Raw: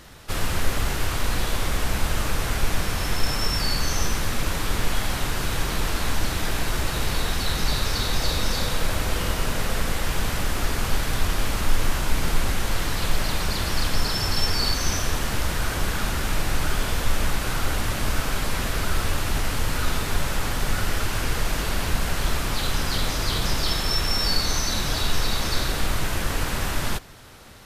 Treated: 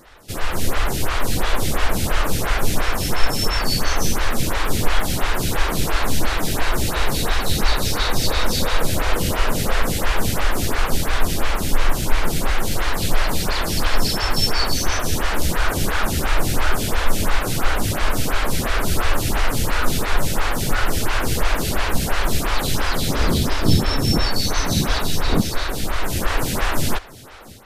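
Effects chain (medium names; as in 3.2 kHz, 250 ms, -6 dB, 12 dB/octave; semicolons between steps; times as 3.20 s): 23.07–25.40 s: wind noise 180 Hz -16 dBFS; level rider gain up to 6.5 dB; lamp-driven phase shifter 2.9 Hz; trim +2.5 dB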